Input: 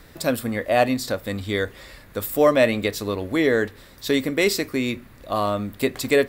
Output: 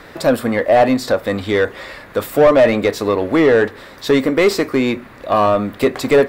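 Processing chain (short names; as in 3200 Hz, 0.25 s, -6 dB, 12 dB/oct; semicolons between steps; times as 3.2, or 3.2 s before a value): dynamic EQ 2700 Hz, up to -4 dB, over -36 dBFS, Q 0.89; overdrive pedal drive 20 dB, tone 1200 Hz, clips at -5 dBFS; gain +3.5 dB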